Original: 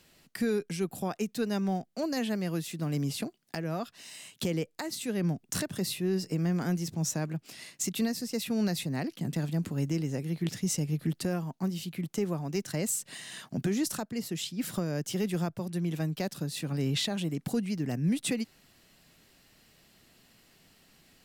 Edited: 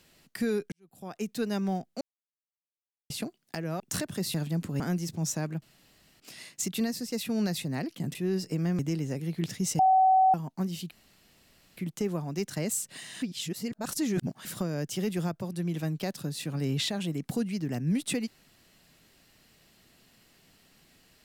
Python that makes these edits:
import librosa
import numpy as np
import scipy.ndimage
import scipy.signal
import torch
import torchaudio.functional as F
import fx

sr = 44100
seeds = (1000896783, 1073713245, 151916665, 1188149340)

y = fx.edit(x, sr, fx.fade_in_span(start_s=0.72, length_s=0.56, curve='qua'),
    fx.silence(start_s=2.01, length_s=1.09),
    fx.cut(start_s=3.8, length_s=1.61),
    fx.swap(start_s=5.95, length_s=0.64, other_s=9.36, other_length_s=0.46),
    fx.insert_room_tone(at_s=7.41, length_s=0.58),
    fx.bleep(start_s=10.82, length_s=0.55, hz=757.0, db=-17.5),
    fx.insert_room_tone(at_s=11.94, length_s=0.86),
    fx.reverse_span(start_s=13.39, length_s=1.23), tone=tone)